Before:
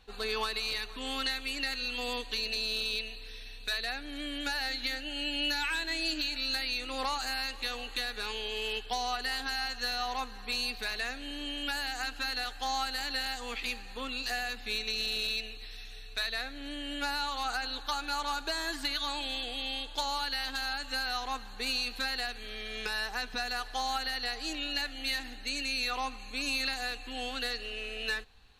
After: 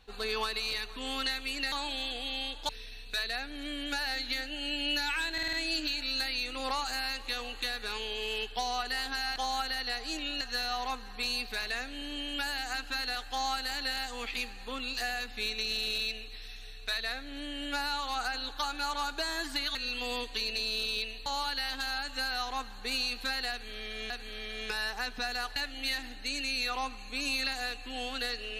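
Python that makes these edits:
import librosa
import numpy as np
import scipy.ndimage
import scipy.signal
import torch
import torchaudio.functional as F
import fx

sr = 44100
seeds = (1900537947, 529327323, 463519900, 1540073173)

y = fx.edit(x, sr, fx.swap(start_s=1.72, length_s=1.51, other_s=19.04, other_length_s=0.97),
    fx.stutter(start_s=5.87, slice_s=0.05, count=5),
    fx.repeat(start_s=22.26, length_s=0.59, count=2),
    fx.move(start_s=23.72, length_s=1.05, to_s=9.7), tone=tone)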